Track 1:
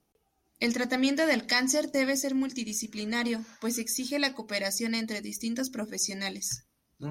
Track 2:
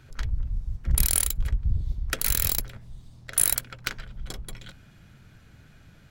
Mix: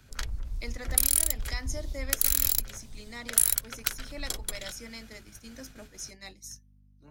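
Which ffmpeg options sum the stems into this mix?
ffmpeg -i stem1.wav -i stem2.wav -filter_complex "[0:a]lowshelf=frequency=120:gain=-7,aeval=exprs='val(0)+0.01*(sin(2*PI*50*n/s)+sin(2*PI*2*50*n/s)/2+sin(2*PI*3*50*n/s)/3+sin(2*PI*4*50*n/s)/4+sin(2*PI*5*50*n/s)/5)':channel_layout=same,volume=-11dB[link_01];[1:a]bass=frequency=250:gain=-4,treble=frequency=4000:gain=8,volume=2.5dB[link_02];[link_01][link_02]amix=inputs=2:normalize=0,agate=range=-7dB:threshold=-45dB:ratio=16:detection=peak,acrossover=split=83|240|7400[link_03][link_04][link_05][link_06];[link_03]acompressor=threshold=-30dB:ratio=4[link_07];[link_04]acompressor=threshold=-59dB:ratio=4[link_08];[link_05]acompressor=threshold=-31dB:ratio=4[link_09];[link_06]acompressor=threshold=-23dB:ratio=4[link_10];[link_07][link_08][link_09][link_10]amix=inputs=4:normalize=0" out.wav

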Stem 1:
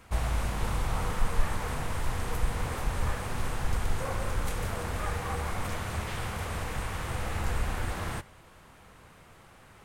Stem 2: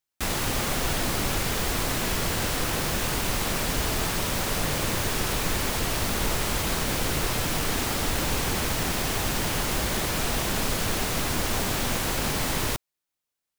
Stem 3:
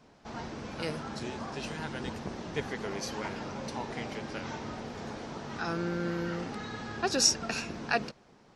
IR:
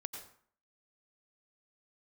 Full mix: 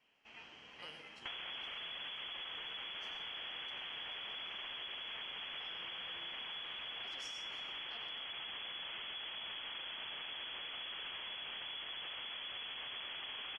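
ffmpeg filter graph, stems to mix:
-filter_complex "[1:a]adelay=1050,volume=-2.5dB[link_01];[2:a]lowshelf=frequency=330:gain=-11.5,volume=-12.5dB,asplit=2[link_02][link_03];[link_03]volume=-4dB[link_04];[link_01][link_02]amix=inputs=2:normalize=0,lowpass=frequency=2900:width_type=q:width=0.5098,lowpass=frequency=2900:width_type=q:width=0.6013,lowpass=frequency=2900:width_type=q:width=0.9,lowpass=frequency=2900:width_type=q:width=2.563,afreqshift=-3400,alimiter=level_in=3.5dB:limit=-24dB:level=0:latency=1,volume=-3.5dB,volume=0dB[link_05];[3:a]atrim=start_sample=2205[link_06];[link_04][link_06]afir=irnorm=-1:irlink=0[link_07];[link_05][link_07]amix=inputs=2:normalize=0,acompressor=threshold=-42dB:ratio=12"

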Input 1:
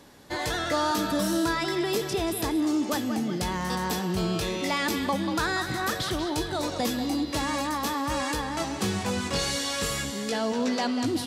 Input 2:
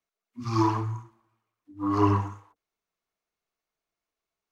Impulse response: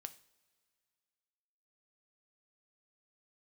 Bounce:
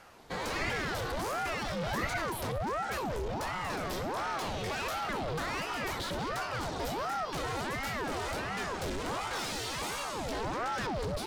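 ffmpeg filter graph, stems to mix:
-filter_complex "[0:a]volume=29.5dB,asoftclip=hard,volume=-29.5dB,volume=0.5dB[link_01];[1:a]highpass=970,volume=-3dB[link_02];[link_01][link_02]amix=inputs=2:normalize=0,highshelf=frequency=4500:gain=-5.5,aeval=exprs='val(0)*sin(2*PI*630*n/s+630*0.75/1.4*sin(2*PI*1.4*n/s))':channel_layout=same"

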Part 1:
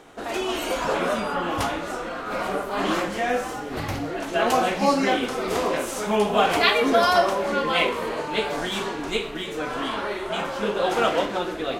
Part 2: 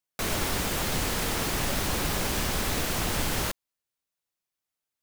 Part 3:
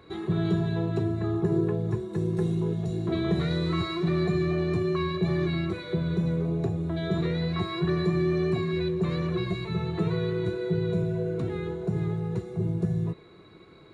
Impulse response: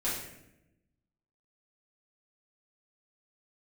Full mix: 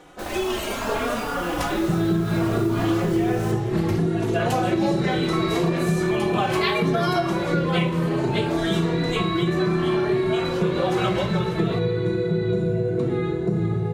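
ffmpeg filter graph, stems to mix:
-filter_complex "[0:a]asplit=2[link_01][link_02];[link_02]adelay=3.6,afreqshift=0.65[link_03];[link_01][link_03]amix=inputs=2:normalize=1,volume=2.5dB[link_04];[1:a]volume=-10.5dB[link_05];[2:a]equalizer=frequency=89:width_type=o:width=0.47:gain=-14.5,adelay=1600,volume=1dB,asplit=2[link_06][link_07];[link_07]volume=-3dB[link_08];[3:a]atrim=start_sample=2205[link_09];[link_08][link_09]afir=irnorm=-1:irlink=0[link_10];[link_04][link_05][link_06][link_10]amix=inputs=4:normalize=0,lowshelf=frequency=190:gain=4.5,acompressor=threshold=-18dB:ratio=6"

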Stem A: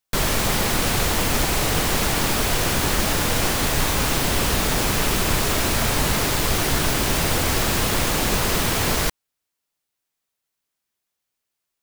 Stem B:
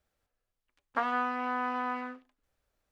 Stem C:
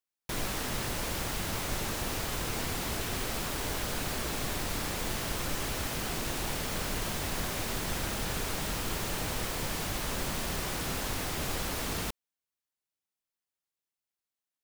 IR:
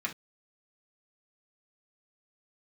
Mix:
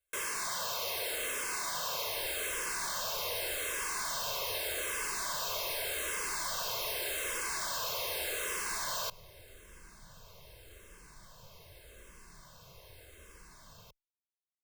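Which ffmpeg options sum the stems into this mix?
-filter_complex "[0:a]highpass=520,asoftclip=type=hard:threshold=-28dB,volume=-5dB[link_01];[1:a]volume=-17.5dB[link_02];[2:a]adelay=1800,volume=-20dB[link_03];[link_01][link_02][link_03]amix=inputs=3:normalize=0,aecho=1:1:1.9:0.65,asplit=2[link_04][link_05];[link_05]afreqshift=-0.84[link_06];[link_04][link_06]amix=inputs=2:normalize=1"

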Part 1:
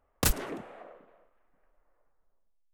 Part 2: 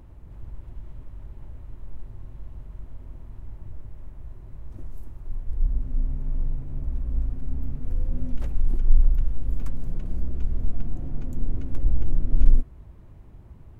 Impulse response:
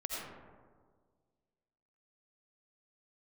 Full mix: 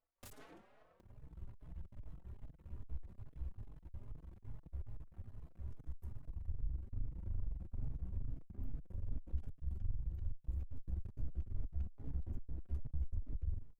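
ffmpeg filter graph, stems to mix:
-filter_complex "[0:a]alimiter=level_in=3dB:limit=-24dB:level=0:latency=1:release=17,volume=-3dB,volume=-12.5dB[link_01];[1:a]acompressor=threshold=-26dB:ratio=4,tremolo=f=67:d=0.889,adelay=1000,volume=-1.5dB,asplit=2[link_02][link_03];[link_03]volume=-22dB,aecho=0:1:673:1[link_04];[link_01][link_02][link_04]amix=inputs=3:normalize=0,aeval=exprs='max(val(0),0)':channel_layout=same,asplit=2[link_05][link_06];[link_06]adelay=4.2,afreqshift=2.4[link_07];[link_05][link_07]amix=inputs=2:normalize=1"

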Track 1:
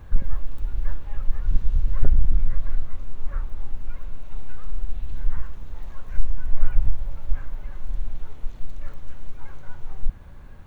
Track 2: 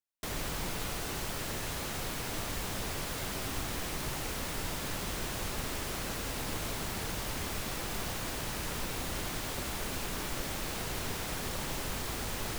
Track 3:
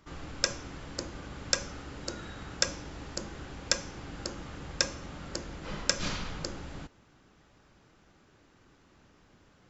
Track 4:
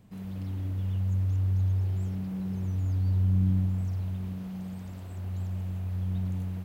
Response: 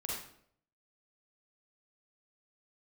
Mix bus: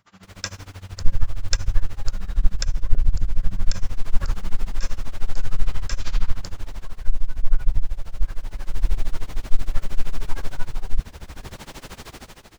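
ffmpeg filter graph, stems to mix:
-filter_complex "[0:a]adelay=900,volume=2.5dB[link_01];[1:a]acrossover=split=7900[link_02][link_03];[link_03]acompressor=threshold=-50dB:ratio=4:attack=1:release=60[link_04];[link_02][link_04]amix=inputs=2:normalize=0,volume=-9.5dB[link_05];[2:a]highpass=730,volume=-1.5dB[link_06];[3:a]flanger=delay=18:depth=5:speed=1.5,volume=-6.5dB[link_07];[link_01][link_05][link_06][link_07]amix=inputs=4:normalize=0,dynaudnorm=framelen=120:gausssize=7:maxgain=11.5dB,tremolo=f=13:d=0.93"

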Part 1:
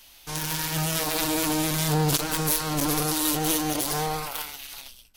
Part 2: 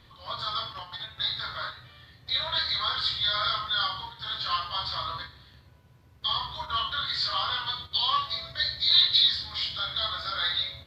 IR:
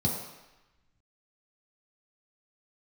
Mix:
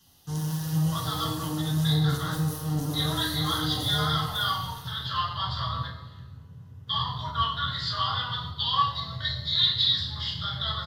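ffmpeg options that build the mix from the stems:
-filter_complex "[0:a]acompressor=threshold=-26dB:ratio=6,volume=-11dB,asplit=2[link_01][link_02];[link_02]volume=-3.5dB[link_03];[1:a]adelay=650,volume=0dB,asplit=2[link_04][link_05];[link_05]volume=-11dB[link_06];[2:a]atrim=start_sample=2205[link_07];[link_03][link_06]amix=inputs=2:normalize=0[link_08];[link_08][link_07]afir=irnorm=-1:irlink=0[link_09];[link_01][link_04][link_09]amix=inputs=3:normalize=0,asuperstop=centerf=2300:order=4:qfactor=7.6"

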